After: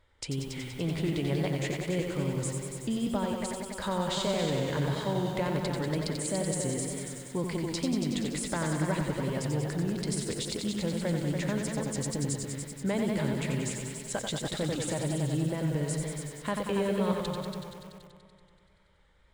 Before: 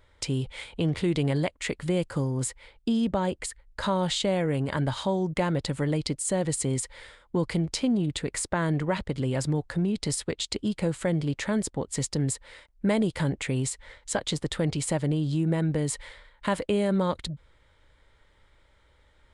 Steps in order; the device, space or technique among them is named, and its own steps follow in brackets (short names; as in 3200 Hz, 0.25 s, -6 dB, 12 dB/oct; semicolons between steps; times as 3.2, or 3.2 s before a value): multi-head tape echo (multi-head echo 95 ms, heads all three, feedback 57%, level -9.5 dB; wow and flutter); lo-fi delay 88 ms, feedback 35%, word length 7-bit, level -6 dB; gain -6 dB